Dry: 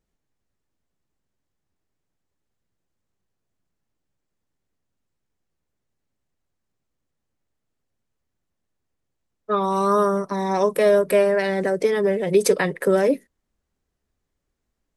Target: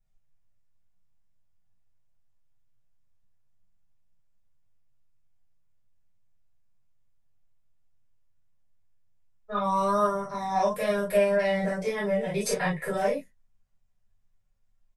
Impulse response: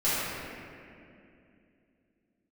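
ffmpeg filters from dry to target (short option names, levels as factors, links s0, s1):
-filter_complex "[1:a]atrim=start_sample=2205,atrim=end_sample=3528,asetrate=52920,aresample=44100[s0];[0:a][s0]afir=irnorm=-1:irlink=0,flanger=delay=7.8:depth=2.1:regen=-40:speed=0.39:shape=sinusoidal,firequalizer=gain_entry='entry(130,0);entry(310,-22);entry(570,-8)':delay=0.05:min_phase=1"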